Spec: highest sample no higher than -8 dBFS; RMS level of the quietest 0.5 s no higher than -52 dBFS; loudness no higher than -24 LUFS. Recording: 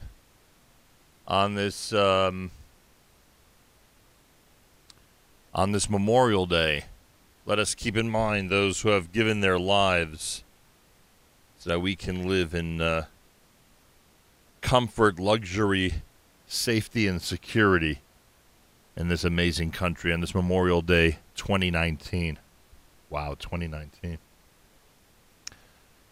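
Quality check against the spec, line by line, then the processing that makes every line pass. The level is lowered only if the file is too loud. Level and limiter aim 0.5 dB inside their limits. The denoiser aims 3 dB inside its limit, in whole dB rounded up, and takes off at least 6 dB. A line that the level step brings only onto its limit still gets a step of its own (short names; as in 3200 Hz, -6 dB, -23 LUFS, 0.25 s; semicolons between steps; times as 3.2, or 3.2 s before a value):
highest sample -5.5 dBFS: fail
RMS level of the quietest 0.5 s -60 dBFS: OK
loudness -25.5 LUFS: OK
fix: limiter -8.5 dBFS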